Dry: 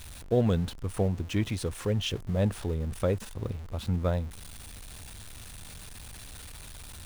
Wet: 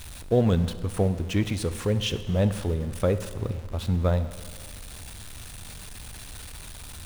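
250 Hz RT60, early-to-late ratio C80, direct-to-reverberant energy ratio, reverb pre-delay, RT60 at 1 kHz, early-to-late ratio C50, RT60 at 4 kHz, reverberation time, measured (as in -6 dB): 1.8 s, 14.0 dB, 12.0 dB, 34 ms, 1.8 s, 13.0 dB, 1.7 s, 1.8 s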